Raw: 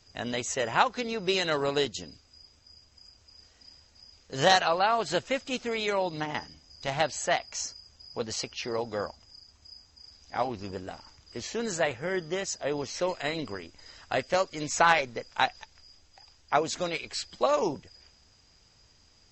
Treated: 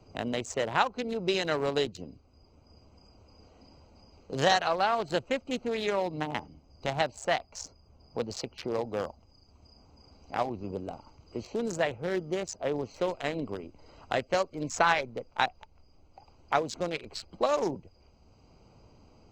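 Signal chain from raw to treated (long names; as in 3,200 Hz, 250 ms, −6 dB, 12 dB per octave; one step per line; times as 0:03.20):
adaptive Wiener filter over 25 samples
multiband upward and downward compressor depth 40%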